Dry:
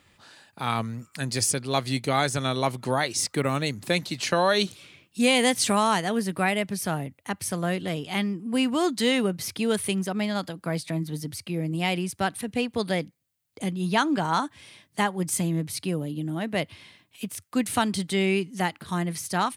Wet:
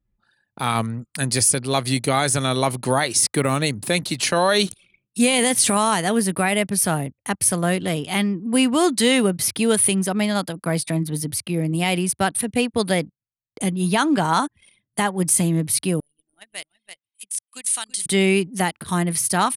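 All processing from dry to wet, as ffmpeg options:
-filter_complex "[0:a]asettb=1/sr,asplit=3[a][b][c];[a]atrim=end=16.004[d];[b]atrim=start=16:end=18.06,asetpts=PTS-STARTPTS,afade=t=in:d=0.004:c=qsin,afade=t=out:st=2.056:d=0.004:c=qsin,lowpass=f=9k:w=0.5412,lowpass=f=9k:w=1.3066,aderivative,aecho=1:1:331:0.501,atrim=end_sample=90846[e];[c]atrim=start=18.056[f];[d][e]acrossfade=d=0.004:c1=hsin:c2=qsin[g];[g][f]acrossfade=d=0.004:c1=qsin:c2=hsin,equalizer=f=10k:t=o:w=0.39:g=11.5,alimiter=limit=-13dB:level=0:latency=1:release=37,anlmdn=0.158,volume=6dB"

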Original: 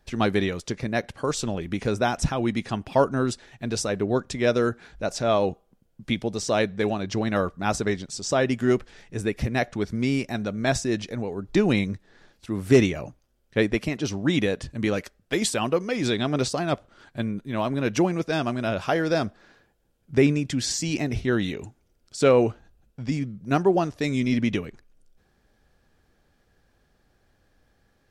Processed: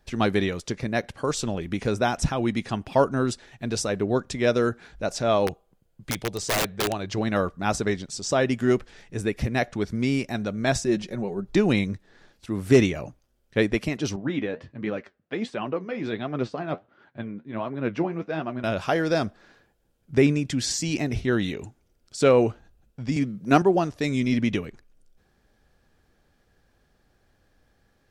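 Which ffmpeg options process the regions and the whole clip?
-filter_complex "[0:a]asettb=1/sr,asplit=3[a][b][c];[a]atrim=end=5.474[d];[b]atrim=start=5.47:end=7.18,asetpts=PTS-STARTPTS,afade=t=in:d=0.004:c=qsin,afade=t=out:st=1.706:d=0.004:c=qsin,equalizer=f=230:w=2.4:g=-7.5,bandreject=f=5.6k:w=15,aeval=exprs='(mod(8.41*val(0)+1,2)-1)/8.41':c=same[e];[c]atrim=start=7.176[f];[d][e]acrossfade=d=0.004:c1=hsin:c2=qsin[g];[g][f]acrossfade=d=0.004:c1=qsin:c2=hsin,asettb=1/sr,asplit=3[h][i][j];[h]atrim=end=10.854[k];[i]atrim=start=10.85:end=11.48,asetpts=PTS-STARTPTS,afade=t=in:d=0.004:c=qsin,afade=t=out:st=0.626:d=0.004:c=qsin,equalizer=f=4k:w=0.32:g=-4,aecho=1:1:5.4:0.63,atrim=end_sample=27783[l];[j]atrim=start=11.476[m];[k][l]acrossfade=d=0.004:c1=hsin:c2=qsin[n];[n][m]acrossfade=d=0.004:c1=qsin:c2=hsin,asettb=1/sr,asplit=3[o][p][q];[o]atrim=end=14.164[r];[p]atrim=start=14.16:end=18.64,asetpts=PTS-STARTPTS,afade=t=in:d=0.004:c=qsin,afade=t=out:st=4.476:d=0.004:c=qsin,flanger=delay=4.7:depth=9.5:regen=55:speed=1.4:shape=triangular,highpass=120,lowpass=2.4k[s];[q]atrim=start=18.636[t];[r][s]acrossfade=d=0.004:c1=hsin:c2=qsin[u];[u][t]acrossfade=d=0.004:c1=qsin:c2=hsin,asettb=1/sr,asplit=3[v][w][x];[v]atrim=end=23.164[y];[w]atrim=start=23.16:end=23.62,asetpts=PTS-STARTPTS,afade=t=in:d=0.004:c=qsin,afade=t=out:st=0.456:d=0.004:c=qsin,highpass=170,acontrast=49[z];[x]atrim=start=23.616[aa];[y][z]acrossfade=d=0.004:c1=hsin:c2=qsin[ab];[ab][aa]acrossfade=d=0.004:c1=qsin:c2=hsin"

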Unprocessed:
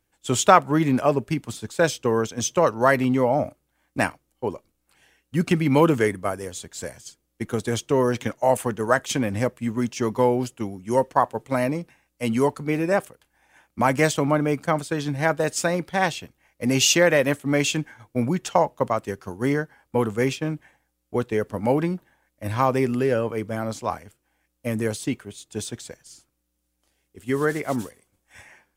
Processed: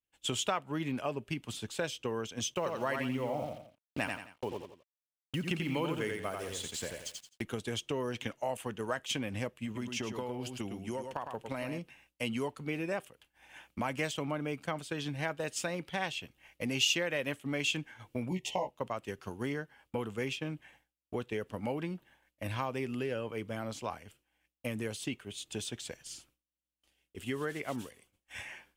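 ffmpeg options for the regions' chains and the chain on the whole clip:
-filter_complex "[0:a]asettb=1/sr,asplit=3[a][b][c];[a]atrim=end=2.544[d];[b]atrim=start=2.54:end=7.42,asetpts=PTS-STARTPTS,afade=t=in:d=0.004:c=qsin,afade=t=out:st=4.876:d=0.004:c=qsin,acrusher=bits=6:mix=0:aa=0.5,agate=range=-33dB:threshold=-46dB:ratio=3:release=100:detection=peak,aecho=1:1:86|172|258:0.562|0.146|0.038,atrim=end_sample=215208[e];[c]atrim=start=7.416[f];[d][e]acrossfade=d=0.004:c1=hsin:c2=qsin[g];[g][f]acrossfade=d=0.004:c1=qsin:c2=hsin,asettb=1/sr,asplit=3[h][i][j];[h]atrim=end=9.654[k];[i]atrim=start=9.65:end=11.79,asetpts=PTS-STARTPTS,afade=t=in:d=0.004:c=qsin,afade=t=out:st=2.136:d=0.004:c=qsin,acompressor=threshold=-23dB:ratio=6:attack=3.2:release=140:knee=1:detection=peak,aecho=1:1:105:0.422,atrim=end_sample=94374[l];[j]atrim=start=11.786[m];[k][l]acrossfade=d=0.004:c1=hsin:c2=qsin[n];[n][m]acrossfade=d=0.004:c1=qsin:c2=hsin,asettb=1/sr,asplit=3[o][p][q];[o]atrim=end=18.304[r];[p]atrim=start=18.3:end=18.71,asetpts=PTS-STARTPTS,afade=t=in:d=0.004:c=qsin,afade=t=out:st=0.406:d=0.004:c=qsin,asuperstop=centerf=1400:order=20:qfactor=1.8,asplit=2[s][t];[t]adelay=16,volume=-2dB[u];[s][u]amix=inputs=2:normalize=0,atrim=end_sample=18081[v];[q]atrim=start=18.706[w];[r][v]acrossfade=d=0.004:c1=hsin:c2=qsin[x];[x][w]acrossfade=d=0.004:c1=qsin:c2=hsin,acompressor=threshold=-40dB:ratio=2.5,equalizer=f=2.9k:t=o:w=0.71:g=10.5,agate=range=-33dB:threshold=-59dB:ratio=3:detection=peak"

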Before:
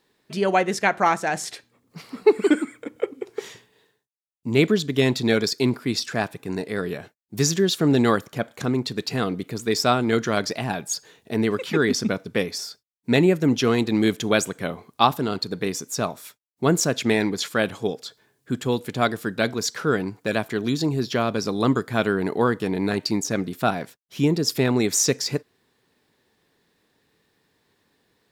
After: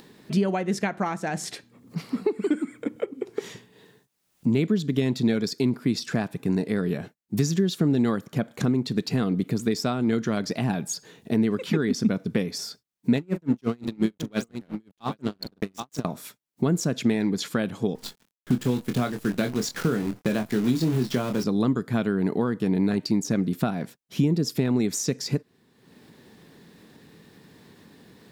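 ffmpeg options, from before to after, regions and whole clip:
-filter_complex "[0:a]asettb=1/sr,asplit=3[a][b][c];[a]atrim=end=13.174[d];[b]atrim=start=13.17:end=16.05,asetpts=PTS-STARTPTS,afade=t=in:d=0.004:c=qsin,afade=t=out:st=2.876:d=0.004:c=qsin,aeval=exprs='sgn(val(0))*max(abs(val(0))-0.0316,0)':c=same,aecho=1:1:42|777:0.237|0.168,atrim=end_sample=127008,aeval=exprs='val(0)*pow(10,-37*(0.5-0.5*cos(2*PI*5.7*n/s))/20)':c=same[e];[c]atrim=start=16.046[f];[d][e]acrossfade=d=0.004:c1=hsin:c2=qsin[g];[g][f]acrossfade=d=0.004:c1=qsin:c2=hsin,asettb=1/sr,asplit=3[h][i][j];[h]atrim=end=17.954[k];[i]atrim=start=17.95:end=21.44,asetpts=PTS-STARTPTS,afade=t=in:d=0.004:c=qsin,afade=t=out:st=3.486:d=0.004:c=qsin,highpass=f=44:w=0.5412,highpass=f=44:w=1.3066,acrusher=bits=6:dc=4:mix=0:aa=0.000001,asplit=2[l][m];[m]adelay=24,volume=-7dB[n];[l][n]amix=inputs=2:normalize=0,atrim=end_sample=153909[o];[j]atrim=start=21.436[p];[k][o]acrossfade=d=0.004:c1=hsin:c2=qsin[q];[q][p]acrossfade=d=0.004:c1=qsin:c2=hsin,acompressor=threshold=-28dB:ratio=4,equalizer=f=190:w=0.82:g=11,acompressor=mode=upward:threshold=-40dB:ratio=2.5"

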